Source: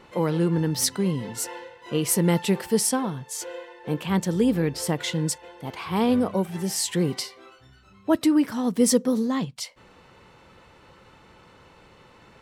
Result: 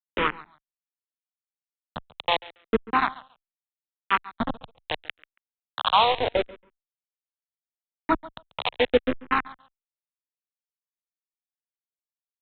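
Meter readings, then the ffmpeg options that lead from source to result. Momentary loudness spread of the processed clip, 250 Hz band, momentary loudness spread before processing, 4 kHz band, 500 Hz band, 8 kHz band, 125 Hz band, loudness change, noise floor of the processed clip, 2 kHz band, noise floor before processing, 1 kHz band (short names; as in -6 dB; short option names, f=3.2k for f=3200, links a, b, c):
18 LU, -12.0 dB, 12 LU, +1.5 dB, -2.5 dB, under -40 dB, -17.5 dB, -1.5 dB, under -85 dBFS, +5.5 dB, -54 dBFS, +7.5 dB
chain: -filter_complex "[0:a]aeval=exprs='val(0)+0.5*0.0158*sgn(val(0))':c=same,highpass=260,aemphasis=mode=production:type=riaa,afwtdn=0.0447,lowpass=f=1.3k:t=q:w=2.8,equalizer=f=360:w=3.3:g=-11,aresample=8000,acrusher=bits=3:mix=0:aa=0.000001,aresample=44100,acrossover=split=710[a][b];[a]aeval=exprs='val(0)*(1-0.7/2+0.7/2*cos(2*PI*1.1*n/s))':c=same[c];[b]aeval=exprs='val(0)*(1-0.7/2-0.7/2*cos(2*PI*1.1*n/s))':c=same[d];[c][d]amix=inputs=2:normalize=0,asplit=2[e][f];[f]aecho=0:1:139|278:0.1|0.016[g];[e][g]amix=inputs=2:normalize=0,asplit=2[h][i];[i]afreqshift=-0.78[j];[h][j]amix=inputs=2:normalize=1,volume=9dB"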